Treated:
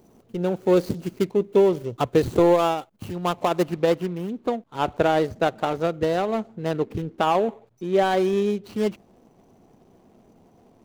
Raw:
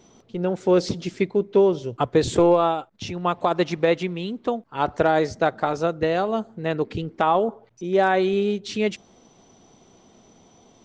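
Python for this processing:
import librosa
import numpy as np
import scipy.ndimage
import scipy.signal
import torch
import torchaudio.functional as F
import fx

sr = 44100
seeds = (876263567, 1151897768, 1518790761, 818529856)

y = scipy.ndimage.median_filter(x, 25, mode='constant')
y = fx.high_shelf(y, sr, hz=6800.0, db=fx.steps((0.0, 12.0), (3.62, 2.5)))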